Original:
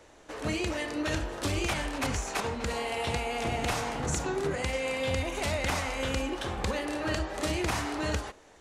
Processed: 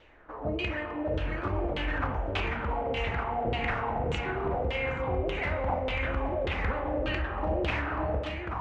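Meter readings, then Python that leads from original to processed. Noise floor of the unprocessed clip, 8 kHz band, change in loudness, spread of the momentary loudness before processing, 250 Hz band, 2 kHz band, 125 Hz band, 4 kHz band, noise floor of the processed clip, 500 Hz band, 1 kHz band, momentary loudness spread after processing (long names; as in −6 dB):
−55 dBFS, below −20 dB, +0.5 dB, 3 LU, −1.5 dB, +0.5 dB, +1.5 dB, −4.5 dB, −39 dBFS, +1.0 dB, +2.0 dB, 2 LU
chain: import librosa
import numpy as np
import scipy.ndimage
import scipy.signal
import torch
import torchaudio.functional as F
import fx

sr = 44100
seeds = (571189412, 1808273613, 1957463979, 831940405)

p1 = x + fx.echo_single(x, sr, ms=830, db=-4.5, dry=0)
p2 = fx.vibrato(p1, sr, rate_hz=1.5, depth_cents=22.0)
p3 = fx.low_shelf(p2, sr, hz=79.0, db=10.5)
p4 = fx.filter_lfo_lowpass(p3, sr, shape='saw_down', hz=1.7, low_hz=480.0, high_hz=3200.0, q=3.5)
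p5 = fx.rev_spring(p4, sr, rt60_s=1.2, pass_ms=(43,), chirp_ms=80, drr_db=9.5)
y = p5 * 10.0 ** (-5.0 / 20.0)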